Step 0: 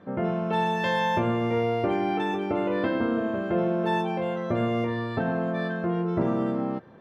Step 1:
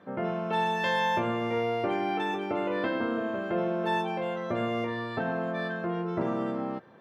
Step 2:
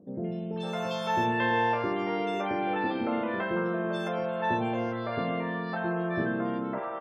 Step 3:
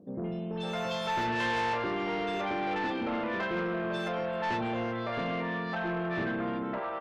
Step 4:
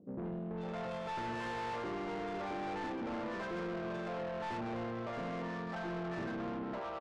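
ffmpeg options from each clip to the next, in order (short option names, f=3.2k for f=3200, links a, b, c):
-af "highpass=95,lowshelf=f=450:g=-7"
-filter_complex "[0:a]acompressor=mode=upward:threshold=-50dB:ratio=2.5,afftfilt=real='re*gte(hypot(re,im),0.00224)':imag='im*gte(hypot(re,im),0.00224)':win_size=1024:overlap=0.75,acrossover=split=500|3200[a][b][c];[c]adelay=70[d];[b]adelay=560[e];[a][e][d]amix=inputs=3:normalize=0,volume=1.5dB"
-af "asoftclip=type=tanh:threshold=-27.5dB,equalizer=f=2.6k:t=o:w=2.1:g=3.5"
-af "aresample=11025,volume=32dB,asoftclip=hard,volume=-32dB,aresample=44100,adynamicsmooth=sensitivity=3.5:basefreq=750,volume=-4dB"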